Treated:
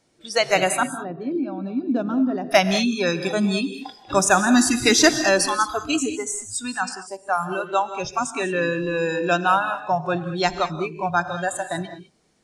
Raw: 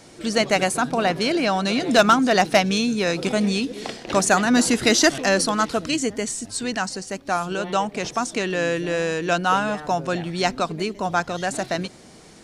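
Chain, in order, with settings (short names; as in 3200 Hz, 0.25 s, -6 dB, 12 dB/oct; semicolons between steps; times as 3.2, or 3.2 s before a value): spectral noise reduction 20 dB; 0.83–2.51 band-pass 260 Hz, Q 2.2; non-linear reverb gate 0.23 s rising, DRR 10 dB; gain +1.5 dB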